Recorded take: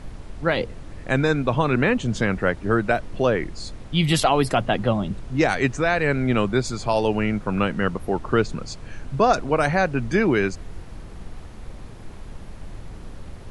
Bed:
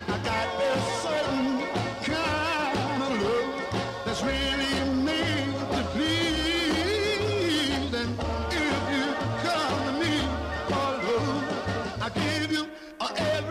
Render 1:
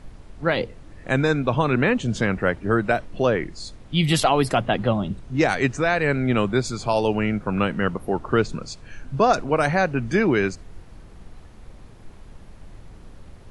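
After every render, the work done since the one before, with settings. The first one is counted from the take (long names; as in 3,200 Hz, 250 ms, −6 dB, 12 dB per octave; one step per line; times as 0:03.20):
noise reduction from a noise print 6 dB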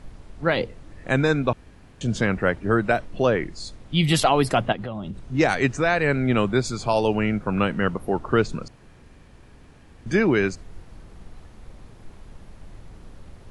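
0:01.53–0:02.01: fill with room tone
0:04.72–0:05.19: downward compressor, threshold −28 dBFS
0:08.68–0:10.06: fill with room tone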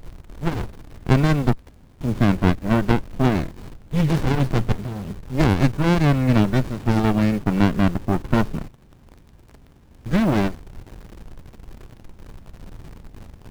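in parallel at −6 dB: bit-depth reduction 6 bits, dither triangular
on the sum: windowed peak hold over 65 samples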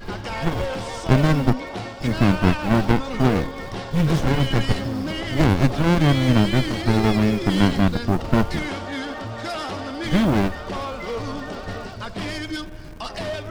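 mix in bed −2.5 dB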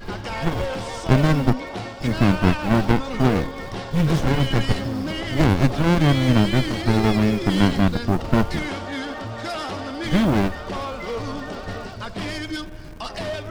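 no processing that can be heard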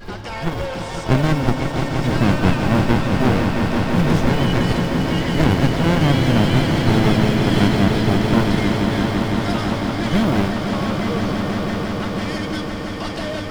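echo that builds up and dies away 168 ms, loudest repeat 5, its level −8.5 dB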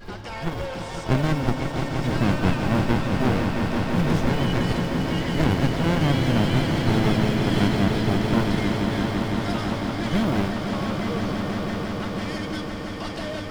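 level −5 dB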